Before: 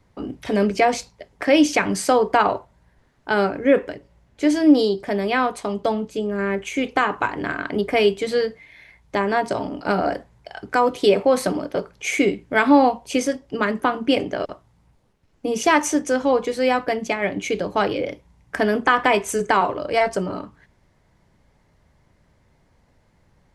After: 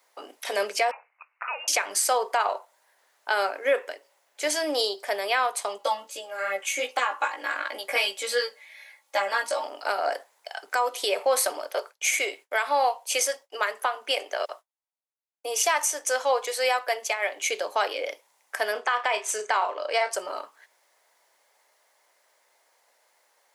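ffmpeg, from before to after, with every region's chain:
ffmpeg -i in.wav -filter_complex "[0:a]asettb=1/sr,asplit=3[link_01][link_02][link_03];[link_01]atrim=end=0.914[link_04];[link_02]atrim=start=0.91:end=1.68,asetpts=PTS-STARTPTS,afade=type=in:duration=0.004:curve=qsin,afade=type=out:start_time=0.766:duration=0.004:curve=qsin,highpass=1300,acompressor=threshold=-27dB:ratio=5:attack=3.2:release=140:knee=1:detection=peak,lowpass=frequency=2600:width_type=q:width=0.5098,lowpass=frequency=2600:width_type=q:width=0.6013,lowpass=frequency=2600:width_type=q:width=0.9,lowpass=frequency=2600:width_type=q:width=2.563,afreqshift=-3100[link_05];[link_03]atrim=start=1.676[link_06];[link_04][link_05]acrossfade=duration=0.004:curve1=hsin:curve2=qsin[link_07];[link_07][link_06]acrossfade=duration=0.004:curve1=qsin:curve2=hsin,asettb=1/sr,asplit=3[link_08][link_09][link_10];[link_08]atrim=end=5.784[link_11];[link_09]atrim=start=5.78:end=9.64,asetpts=PTS-STARTPTS,afade=type=in:duration=0.004:curve=qsin,afade=type=out:start_time=3.856:duration=0.004:curve=qsin,aecho=1:1:3.6:0.87,atrim=end_sample=170226,flanger=delay=15.5:depth=2.1:speed=2.6[link_12];[link_10]atrim=start=9.636[link_13];[link_11][link_12]acrossfade=duration=0.004:curve1=hsin:curve2=qsin[link_14];[link_14][link_13]acrossfade=duration=0.004:curve1=qsin:curve2=hsin,asettb=1/sr,asplit=3[link_15][link_16][link_17];[link_15]atrim=end=11.614[link_18];[link_16]atrim=start=11.61:end=17.48,asetpts=PTS-STARTPTS,afade=type=in:duration=0.004:curve=qsin,afade=type=out:start_time=5.866:duration=0.004:curve=qsin,highpass=350,agate=range=-33dB:threshold=-48dB:ratio=3:release=100:detection=peak[link_19];[link_17]atrim=start=17.476[link_20];[link_18][link_19]acrossfade=duration=0.004:curve1=hsin:curve2=qsin[link_21];[link_21][link_20]acrossfade=duration=0.004:curve1=qsin:curve2=hsin,asettb=1/sr,asplit=3[link_22][link_23][link_24];[link_22]atrim=end=18.724[link_25];[link_23]atrim=start=18.72:end=20.11,asetpts=PTS-STARTPTS,afade=type=in:duration=0.004:curve=qsin,afade=type=out:start_time=1.386:duration=0.004:curve=qsin,highpass=100,lowpass=6200,asplit=2[link_26][link_27];[link_27]adelay=33,volume=-11.5dB[link_28];[link_26][link_28]amix=inputs=2:normalize=0,atrim=end_sample=61299[link_29];[link_24]atrim=start=20.106[link_30];[link_25][link_29]acrossfade=duration=0.004:curve1=hsin:curve2=qsin[link_31];[link_31][link_30]acrossfade=duration=0.004:curve1=qsin:curve2=hsin,highpass=frequency=550:width=0.5412,highpass=frequency=550:width=1.3066,aemphasis=mode=production:type=50fm,alimiter=limit=-13dB:level=0:latency=1:release=322" out.wav

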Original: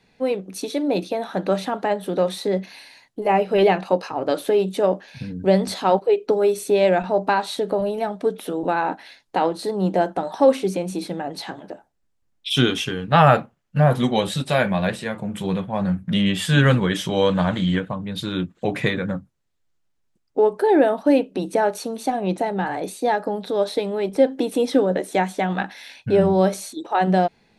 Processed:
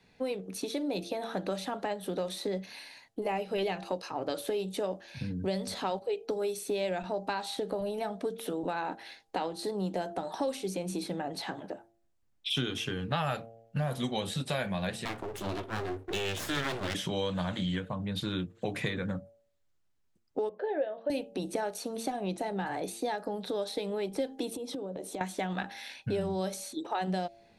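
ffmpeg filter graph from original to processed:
ffmpeg -i in.wav -filter_complex "[0:a]asettb=1/sr,asplit=3[link_01][link_02][link_03];[link_01]atrim=end=15.054[link_04];[link_02]atrim=start=15.05:end=16.95,asetpts=PTS-STARTPTS,afade=type=in:duration=0.004:curve=qsin,afade=type=out:start_time=1.896:duration=0.004:curve=qsin,equalizer=frequency=110:width=3.2:gain=-10.5,aeval=exprs='abs(val(0))':channel_layout=same[link_05];[link_03]atrim=start=16.946[link_06];[link_04][link_05]acrossfade=duration=0.004:curve1=hsin:curve2=qsin[link_07];[link_07][link_06]acrossfade=duration=0.004:curve1=qsin:curve2=hsin,asettb=1/sr,asplit=3[link_08][link_09][link_10];[link_08]atrim=end=20.494[link_11];[link_09]atrim=start=20.49:end=21.1,asetpts=PTS-STARTPTS,afade=type=in:duration=0.004:curve=qsin,afade=type=out:start_time=0.606:duration=0.004:curve=qsin,highpass=240,equalizer=frequency=260:width_type=q:width=4:gain=-10,equalizer=frequency=360:width_type=q:width=4:gain=-10,equalizer=frequency=540:width_type=q:width=4:gain=10,equalizer=frequency=900:width_type=q:width=4:gain=-8,equalizer=frequency=1300:width_type=q:width=4:gain=-6,equalizer=frequency=2300:width_type=q:width=4:gain=-8,lowpass=frequency=2700:width=0.5412,lowpass=frequency=2700:width=1.3066,asplit=2[link_12][link_13];[link_13]adelay=17,volume=-13dB[link_14];[link_12][link_14]amix=inputs=2:normalize=0,atrim=end_sample=26901[link_15];[link_10]atrim=start=21.096[link_16];[link_11][link_15]acrossfade=duration=0.004:curve1=hsin:curve2=qsin[link_17];[link_17][link_16]acrossfade=duration=0.004:curve1=qsin:curve2=hsin,asettb=1/sr,asplit=3[link_18][link_19][link_20];[link_18]atrim=end=24.514[link_21];[link_19]atrim=start=24.51:end=25.21,asetpts=PTS-STARTPTS,afade=type=in:duration=0.004:curve=qsin,afade=type=out:start_time=0.696:duration=0.004:curve=qsin,acompressor=threshold=-29dB:ratio=16:attack=3.2:release=140:knee=1:detection=peak,equalizer=frequency=1800:width=1.7:gain=-11.5[link_22];[link_20]atrim=start=25.206[link_23];[link_21][link_22]acrossfade=duration=0.004:curve1=hsin:curve2=qsin[link_24];[link_24][link_23]acrossfade=duration=0.004:curve1=qsin:curve2=hsin,equalizer=frequency=95:width_type=o:width=0.22:gain=7,bandreject=frequency=114:width_type=h:width=4,bandreject=frequency=228:width_type=h:width=4,bandreject=frequency=342:width_type=h:width=4,bandreject=frequency=456:width_type=h:width=4,bandreject=frequency=570:width_type=h:width=4,bandreject=frequency=684:width_type=h:width=4,bandreject=frequency=798:width_type=h:width=4,acrossover=split=84|3200[link_25][link_26][link_27];[link_25]acompressor=threshold=-48dB:ratio=4[link_28];[link_26]acompressor=threshold=-28dB:ratio=4[link_29];[link_27]acompressor=threshold=-36dB:ratio=4[link_30];[link_28][link_29][link_30]amix=inputs=3:normalize=0,volume=-3.5dB" out.wav

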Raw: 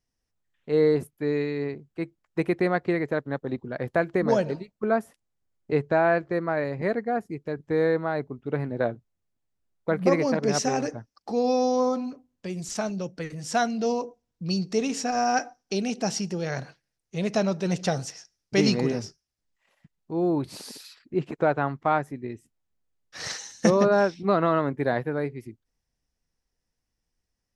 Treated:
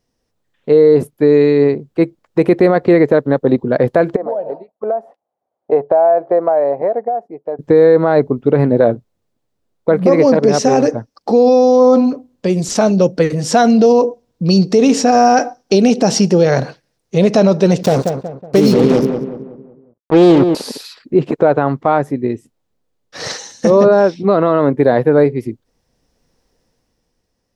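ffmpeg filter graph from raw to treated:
ffmpeg -i in.wav -filter_complex "[0:a]asettb=1/sr,asplit=3[link_01][link_02][link_03];[link_01]atrim=end=4.164[link_04];[link_02]atrim=start=4.16:end=7.59,asetpts=PTS-STARTPTS,afade=type=in:duration=0.004:curve=qsin,afade=type=out:start_time=3.426:duration=0.004:curve=qsin,bandpass=frequency=720:width_type=q:width=4.4,acompressor=threshold=-36dB:ratio=6:attack=3.2:release=140:knee=1:detection=peak[link_05];[link_03]atrim=start=7.586[link_06];[link_04][link_05]acrossfade=duration=0.004:curve1=hsin:curve2=qsin[link_07];[link_07][link_06]acrossfade=duration=0.004:curve1=qsin:curve2=hsin,asettb=1/sr,asplit=3[link_08][link_09][link_10];[link_08]atrim=end=17.834[link_11];[link_09]atrim=start=17.83:end=20.55,asetpts=PTS-STARTPTS,afade=type=in:duration=0.004:curve=qsin,afade=type=out:start_time=2.716:duration=0.004:curve=qsin,equalizer=frequency=2400:width=0.64:gain=-7.5,acrusher=bits=4:mix=0:aa=0.5,asplit=2[link_12][link_13];[link_13]adelay=185,lowpass=frequency=1700:poles=1,volume=-8dB,asplit=2[link_14][link_15];[link_15]adelay=185,lowpass=frequency=1700:poles=1,volume=0.4,asplit=2[link_16][link_17];[link_17]adelay=185,lowpass=frequency=1700:poles=1,volume=0.4,asplit=2[link_18][link_19];[link_19]adelay=185,lowpass=frequency=1700:poles=1,volume=0.4,asplit=2[link_20][link_21];[link_21]adelay=185,lowpass=frequency=1700:poles=1,volume=0.4[link_22];[link_12][link_14][link_16][link_18][link_20][link_22]amix=inputs=6:normalize=0,atrim=end_sample=119952[link_23];[link_10]atrim=start=20.546[link_24];[link_11][link_23]acrossfade=duration=0.004:curve1=hsin:curve2=qsin[link_25];[link_25][link_24]acrossfade=duration=0.004:curve1=qsin:curve2=hsin,equalizer=frequency=125:width_type=o:width=1:gain=4,equalizer=frequency=250:width_type=o:width=1:gain=6,equalizer=frequency=500:width_type=o:width=1:gain=10,equalizer=frequency=1000:width_type=o:width=1:gain=4,equalizer=frequency=4000:width_type=o:width=1:gain=4,dynaudnorm=framelen=100:gausssize=21:maxgain=11.5dB,alimiter=level_in=8.5dB:limit=-1dB:release=50:level=0:latency=1,volume=-1dB" out.wav

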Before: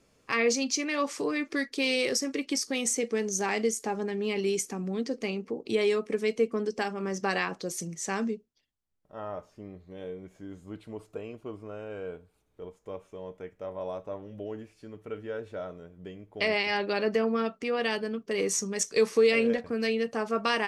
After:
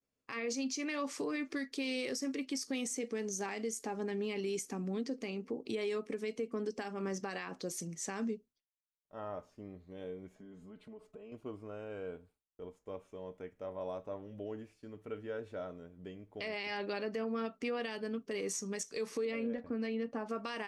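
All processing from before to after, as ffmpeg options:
ffmpeg -i in.wav -filter_complex "[0:a]asettb=1/sr,asplit=3[link_01][link_02][link_03];[link_01]atrim=end=10.354[link_04];[link_02]atrim=start=10.35:end=11.32,asetpts=PTS-STARTPTS,afade=type=in:duration=0.004:curve=qsin,afade=type=out:start_time=0.966:duration=0.004:curve=qsin,highshelf=frequency=4800:gain=-9.5,aecho=1:1:4.7:0.84,atrim=end_sample=42777,acompressor=threshold=-46dB:ratio=3:attack=3.2:release=140:knee=1:detection=peak[link_05];[link_03]atrim=start=11.316[link_06];[link_04][link_05]acrossfade=duration=0.004:curve1=hsin:curve2=qsin[link_07];[link_07][link_06]acrossfade=duration=0.004:curve1=qsin:curve2=hsin,asettb=1/sr,asplit=3[link_08][link_09][link_10];[link_08]atrim=end=19.254[link_11];[link_09]atrim=start=19.25:end=20.29,asetpts=PTS-STARTPTS,afade=type=in:duration=0.004:curve=qsin,afade=type=out:start_time=1.036:duration=0.004:curve=qsin,lowpass=frequency=1300:poles=1,aecho=1:1:3.5:0.31,atrim=end_sample=45864[link_12];[link_10]atrim=start=20.286[link_13];[link_11][link_12]acrossfade=duration=0.004:curve1=hsin:curve2=qsin[link_14];[link_14][link_13]acrossfade=duration=0.004:curve1=qsin:curve2=hsin,agate=range=-33dB:threshold=-53dB:ratio=3:detection=peak,equalizer=frequency=260:width=8:gain=6.5,alimiter=limit=-23.5dB:level=0:latency=1:release=133,volume=-5dB" out.wav

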